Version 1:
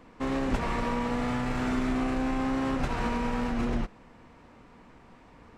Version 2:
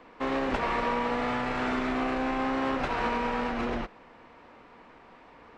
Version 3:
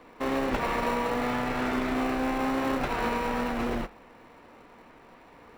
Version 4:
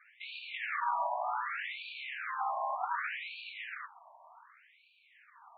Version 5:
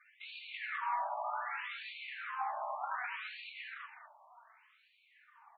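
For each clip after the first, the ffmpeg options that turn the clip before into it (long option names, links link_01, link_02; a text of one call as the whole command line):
ffmpeg -i in.wav -filter_complex "[0:a]acrossover=split=320 4900:gain=0.251 1 0.178[link_01][link_02][link_03];[link_01][link_02][link_03]amix=inputs=3:normalize=0,volume=4dB" out.wav
ffmpeg -i in.wav -filter_complex "[0:a]flanger=delay=6.7:depth=3.7:regen=-80:speed=1.4:shape=sinusoidal,asplit=2[link_01][link_02];[link_02]acrusher=samples=27:mix=1:aa=0.000001,volume=-10.5dB[link_03];[link_01][link_03]amix=inputs=2:normalize=0,volume=4dB" out.wav
ffmpeg -i in.wav -af "afftfilt=real='re*between(b*sr/1024,790*pow(3300/790,0.5+0.5*sin(2*PI*0.66*pts/sr))/1.41,790*pow(3300/790,0.5+0.5*sin(2*PI*0.66*pts/sr))*1.41)':imag='im*between(b*sr/1024,790*pow(3300/790,0.5+0.5*sin(2*PI*0.66*pts/sr))/1.41,790*pow(3300/790,0.5+0.5*sin(2*PI*0.66*pts/sr))*1.41)':win_size=1024:overlap=0.75" out.wav
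ffmpeg -i in.wav -af "aecho=1:1:203:0.355,flanger=delay=3.3:depth=1.4:regen=47:speed=0.75:shape=sinusoidal" out.wav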